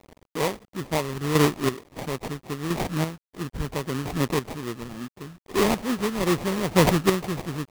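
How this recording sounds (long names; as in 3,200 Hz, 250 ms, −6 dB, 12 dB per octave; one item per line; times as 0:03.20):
a quantiser's noise floor 8 bits, dither none
chopped level 0.74 Hz, depth 60%, duty 25%
phaser sweep stages 8, 2.4 Hz, lowest notch 580–2,100 Hz
aliases and images of a low sample rate 1,500 Hz, jitter 20%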